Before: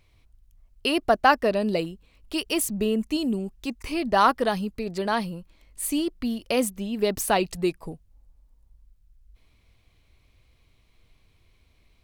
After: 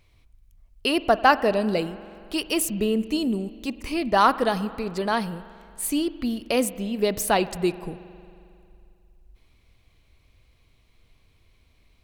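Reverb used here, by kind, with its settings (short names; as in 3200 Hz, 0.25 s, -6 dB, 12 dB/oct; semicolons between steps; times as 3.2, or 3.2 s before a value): spring tank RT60 2.5 s, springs 45 ms, chirp 45 ms, DRR 15 dB; gain +1 dB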